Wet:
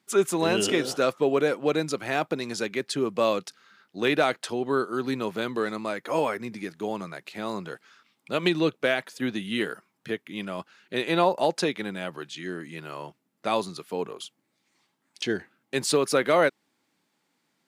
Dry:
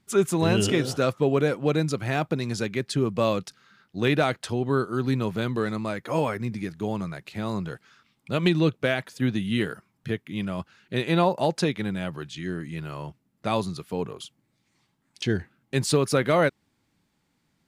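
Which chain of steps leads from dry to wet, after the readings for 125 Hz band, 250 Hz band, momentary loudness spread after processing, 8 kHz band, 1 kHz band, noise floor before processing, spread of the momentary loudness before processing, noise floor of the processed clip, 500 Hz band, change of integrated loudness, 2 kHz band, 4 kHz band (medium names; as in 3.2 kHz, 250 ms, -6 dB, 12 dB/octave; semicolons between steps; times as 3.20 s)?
-11.0 dB, -3.0 dB, 13 LU, +1.0 dB, +1.0 dB, -72 dBFS, 12 LU, -75 dBFS, +0.5 dB, -1.0 dB, +1.0 dB, +1.0 dB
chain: high-pass 290 Hz 12 dB/octave; trim +1 dB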